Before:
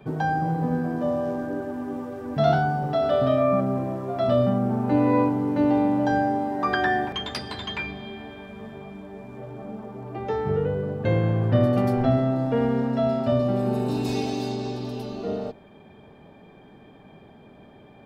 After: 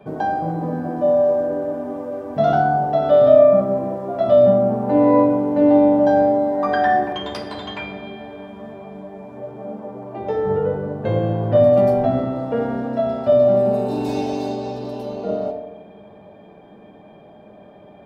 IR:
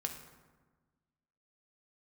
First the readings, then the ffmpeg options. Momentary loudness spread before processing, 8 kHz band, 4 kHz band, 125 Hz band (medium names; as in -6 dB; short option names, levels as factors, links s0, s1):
16 LU, no reading, -1.0 dB, -1.5 dB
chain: -filter_complex "[0:a]equalizer=f=610:w=0.87:g=10.5[s0];[1:a]atrim=start_sample=2205,asetrate=57330,aresample=44100[s1];[s0][s1]afir=irnorm=-1:irlink=0"